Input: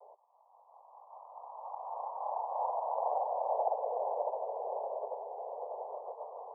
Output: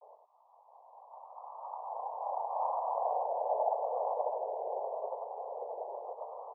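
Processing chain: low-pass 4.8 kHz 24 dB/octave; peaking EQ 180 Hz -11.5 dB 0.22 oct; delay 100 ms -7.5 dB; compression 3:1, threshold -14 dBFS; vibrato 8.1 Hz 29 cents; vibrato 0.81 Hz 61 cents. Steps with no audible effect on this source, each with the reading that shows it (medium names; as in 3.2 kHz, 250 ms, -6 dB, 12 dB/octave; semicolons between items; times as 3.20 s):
low-pass 4.8 kHz: input has nothing above 1.2 kHz; peaking EQ 180 Hz: input has nothing below 380 Hz; compression, threshold -14 dBFS: peak at its input -18.0 dBFS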